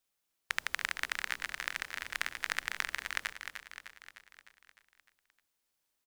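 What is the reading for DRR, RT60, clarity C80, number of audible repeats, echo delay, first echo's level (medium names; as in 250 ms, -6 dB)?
no reverb, no reverb, no reverb, 6, 304 ms, -8.5 dB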